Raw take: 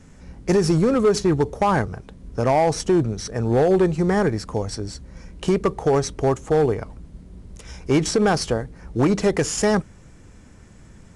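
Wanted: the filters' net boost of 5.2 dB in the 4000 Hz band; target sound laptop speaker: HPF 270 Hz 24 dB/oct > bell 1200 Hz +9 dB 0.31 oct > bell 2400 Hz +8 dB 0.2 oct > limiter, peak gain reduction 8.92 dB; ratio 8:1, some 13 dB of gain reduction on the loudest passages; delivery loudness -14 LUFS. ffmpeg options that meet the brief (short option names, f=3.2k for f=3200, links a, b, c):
-af "equalizer=f=4k:t=o:g=7,acompressor=threshold=-28dB:ratio=8,highpass=f=270:w=0.5412,highpass=f=270:w=1.3066,equalizer=f=1.2k:t=o:w=0.31:g=9,equalizer=f=2.4k:t=o:w=0.2:g=8,volume=20.5dB,alimiter=limit=-3dB:level=0:latency=1"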